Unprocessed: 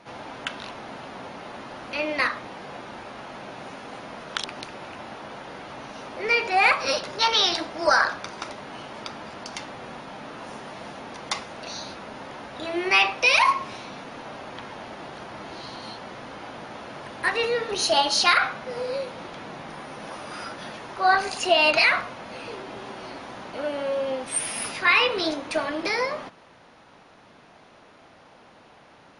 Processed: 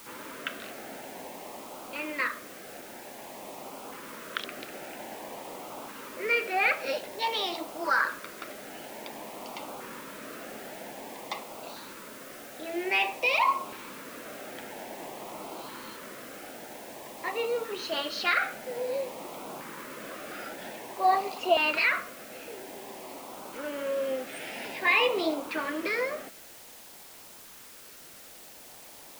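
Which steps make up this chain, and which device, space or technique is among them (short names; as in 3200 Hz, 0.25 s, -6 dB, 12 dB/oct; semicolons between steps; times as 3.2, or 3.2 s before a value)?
shortwave radio (BPF 250–2600 Hz; tremolo 0.2 Hz, depth 36%; LFO notch saw up 0.51 Hz 660–1900 Hz; white noise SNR 16 dB)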